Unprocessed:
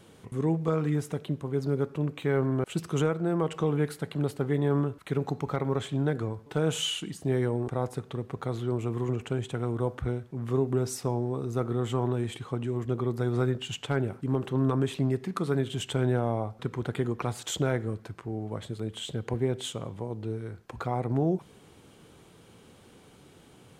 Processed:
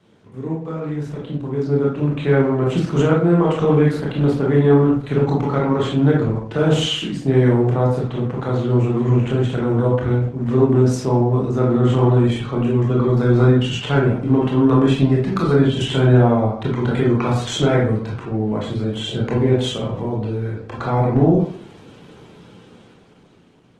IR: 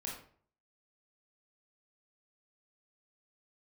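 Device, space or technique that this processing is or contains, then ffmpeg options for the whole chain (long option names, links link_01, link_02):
far-field microphone of a smart speaker: -filter_complex "[0:a]asplit=3[link_01][link_02][link_03];[link_01]afade=type=out:start_time=0.97:duration=0.02[link_04];[link_02]bandreject=frequency=366.1:width_type=h:width=4,bandreject=frequency=732.2:width_type=h:width=4,bandreject=frequency=1098.3:width_type=h:width=4,bandreject=frequency=1464.4:width_type=h:width=4,bandreject=frequency=1830.5:width_type=h:width=4,bandreject=frequency=2196.6:width_type=h:width=4,afade=type=in:start_time=0.97:duration=0.02,afade=type=out:start_time=2.5:duration=0.02[link_05];[link_03]afade=type=in:start_time=2.5:duration=0.02[link_06];[link_04][link_05][link_06]amix=inputs=3:normalize=0,lowpass=5500[link_07];[1:a]atrim=start_sample=2205[link_08];[link_07][link_08]afir=irnorm=-1:irlink=0,highpass=frequency=87:width=0.5412,highpass=frequency=87:width=1.3066,dynaudnorm=framelen=460:gausssize=7:maxgain=11.5dB,volume=1.5dB" -ar 48000 -c:a libopus -b:a 16k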